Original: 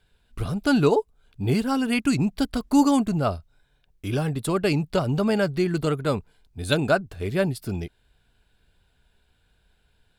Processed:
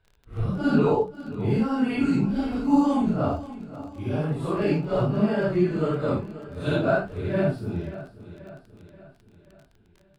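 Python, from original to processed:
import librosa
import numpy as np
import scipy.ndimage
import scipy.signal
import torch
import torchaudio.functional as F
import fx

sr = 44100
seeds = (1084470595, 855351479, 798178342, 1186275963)

p1 = fx.phase_scramble(x, sr, seeds[0], window_ms=200)
p2 = fx.high_shelf(p1, sr, hz=2700.0, db=-12.0)
p3 = p2 + fx.echo_feedback(p2, sr, ms=532, feedback_pct=52, wet_db=-15.5, dry=0)
p4 = fx.dmg_crackle(p3, sr, seeds[1], per_s=26.0, level_db=-38.0)
y = fx.high_shelf(p4, sr, hz=8200.0, db=-10.5)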